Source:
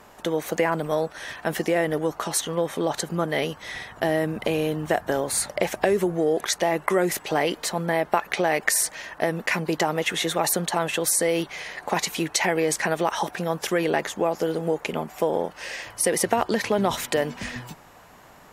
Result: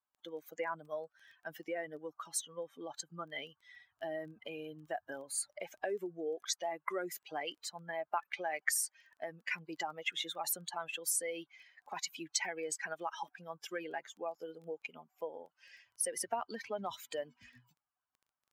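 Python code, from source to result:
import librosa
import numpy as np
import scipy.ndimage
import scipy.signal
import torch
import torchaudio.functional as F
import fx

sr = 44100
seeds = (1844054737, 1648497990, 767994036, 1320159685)

y = fx.bin_expand(x, sr, power=2.0)
y = fx.highpass(y, sr, hz=780.0, slope=6)
y = fx.dmg_crackle(y, sr, seeds[0], per_s=10.0, level_db=-46.0)
y = F.gain(torch.from_numpy(y), -7.0).numpy()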